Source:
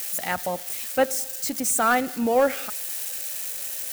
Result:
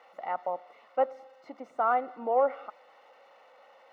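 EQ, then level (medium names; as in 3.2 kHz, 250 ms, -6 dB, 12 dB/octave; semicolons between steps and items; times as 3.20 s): Savitzky-Golay filter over 65 samples; high-pass 720 Hz 12 dB/octave; distance through air 290 m; +2.0 dB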